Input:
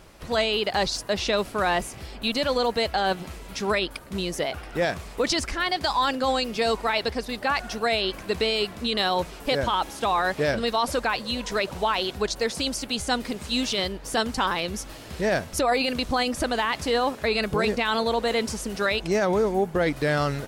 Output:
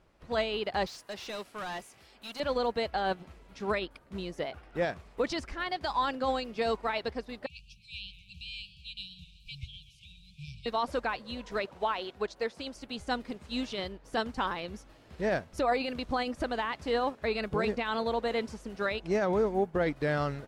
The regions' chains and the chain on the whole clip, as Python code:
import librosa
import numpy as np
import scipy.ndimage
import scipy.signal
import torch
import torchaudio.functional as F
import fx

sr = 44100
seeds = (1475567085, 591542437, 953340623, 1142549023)

y = fx.chain(x, sr, fx.tilt_eq(slope=3.0),
    fx.overload_stage(gain_db=25.5), at=(0.86, 2.4))
y = fx.chain(y, sr, fx.brickwall_bandstop(low_hz=180.0, high_hz=2300.0),
    fx.high_shelf(hz=11000.0, db=-7.5),
    fx.echo_warbled(ms=126, feedback_pct=66, rate_hz=2.8, cents=139, wet_db=-12.0), at=(7.46, 10.66))
y = fx.chain(y, sr, fx.highpass(hz=43.0, slope=12),
    fx.bass_treble(bass_db=-6, treble_db=-2), at=(11.65, 12.75))
y = fx.lowpass(y, sr, hz=2500.0, slope=6)
y = fx.upward_expand(y, sr, threshold_db=-41.0, expansion=1.5)
y = F.gain(torch.from_numpy(y), -4.0).numpy()